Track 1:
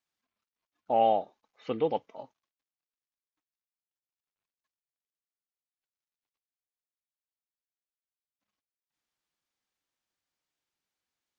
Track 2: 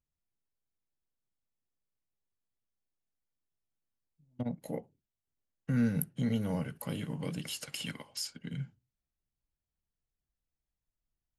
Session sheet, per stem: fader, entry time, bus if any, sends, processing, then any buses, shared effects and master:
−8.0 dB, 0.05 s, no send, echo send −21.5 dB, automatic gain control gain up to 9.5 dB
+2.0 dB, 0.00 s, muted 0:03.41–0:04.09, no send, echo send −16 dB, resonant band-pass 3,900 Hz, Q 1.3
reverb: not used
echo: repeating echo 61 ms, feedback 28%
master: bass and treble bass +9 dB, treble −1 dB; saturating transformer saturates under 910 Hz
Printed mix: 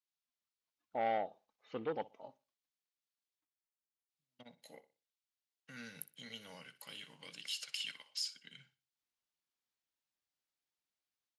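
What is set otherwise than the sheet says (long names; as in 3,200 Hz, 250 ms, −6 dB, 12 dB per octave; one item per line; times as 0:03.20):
stem 1 −8.0 dB → −18.0 dB
master: missing bass and treble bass +9 dB, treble −1 dB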